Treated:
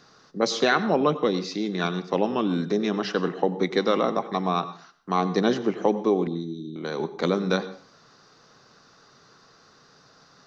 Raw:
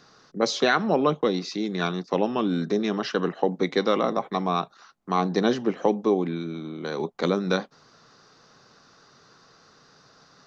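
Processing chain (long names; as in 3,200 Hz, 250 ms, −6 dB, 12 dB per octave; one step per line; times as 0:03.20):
0:06.27–0:06.76: elliptic band-stop filter 370–3,800 Hz
on a send: convolution reverb RT60 0.45 s, pre-delay 86 ms, DRR 14 dB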